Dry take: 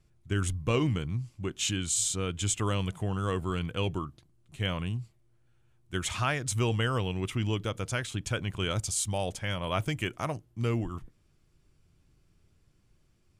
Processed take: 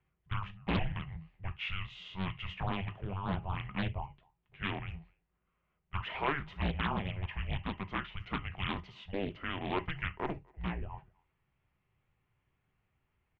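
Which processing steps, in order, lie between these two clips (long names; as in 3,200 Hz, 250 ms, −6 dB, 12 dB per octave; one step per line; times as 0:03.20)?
mains-hum notches 50/100/150/200/250 Hz
on a send at −12 dB: comb filter 4.6 ms, depth 93% + convolution reverb, pre-delay 3 ms
on the sum: single-sideband voice off tune −290 Hz 180–3,200 Hz
far-end echo of a speakerphone 250 ms, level −28 dB
highs frequency-modulated by the lows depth 0.71 ms
level −2.5 dB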